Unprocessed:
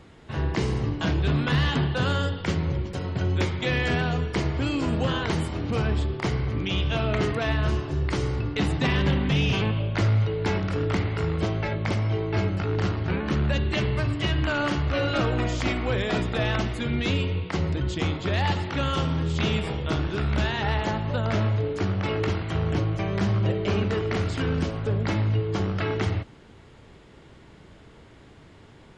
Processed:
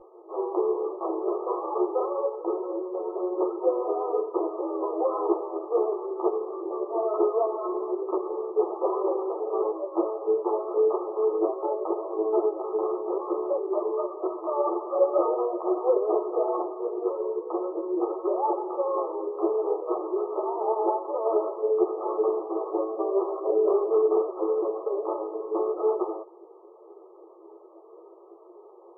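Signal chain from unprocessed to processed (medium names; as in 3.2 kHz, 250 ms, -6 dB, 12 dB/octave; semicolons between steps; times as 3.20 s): FFT band-pass 330–1300 Hz; tilt EQ -4 dB/octave; three-phase chorus; trim +5 dB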